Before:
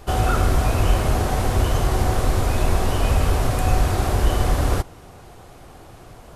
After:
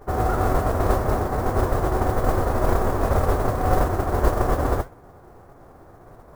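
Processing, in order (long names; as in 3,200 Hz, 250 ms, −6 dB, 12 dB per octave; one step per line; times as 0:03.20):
spectral envelope flattened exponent 0.3
Gaussian smoothing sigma 7.4 samples
noise that follows the level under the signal 23 dB
flanger 1.8 Hz, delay 6.8 ms, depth 7.8 ms, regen −67%
level +6.5 dB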